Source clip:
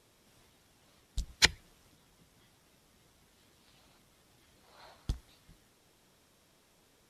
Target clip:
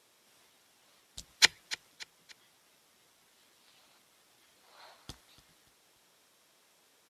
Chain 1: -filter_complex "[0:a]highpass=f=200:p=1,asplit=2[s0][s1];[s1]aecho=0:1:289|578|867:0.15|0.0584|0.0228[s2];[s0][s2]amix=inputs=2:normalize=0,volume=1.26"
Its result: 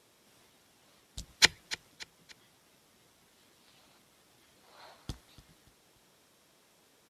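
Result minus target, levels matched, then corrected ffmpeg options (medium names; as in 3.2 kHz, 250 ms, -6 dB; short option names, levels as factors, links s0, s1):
250 Hz band +7.0 dB
-filter_complex "[0:a]highpass=f=670:p=1,asplit=2[s0][s1];[s1]aecho=0:1:289|578|867:0.15|0.0584|0.0228[s2];[s0][s2]amix=inputs=2:normalize=0,volume=1.26"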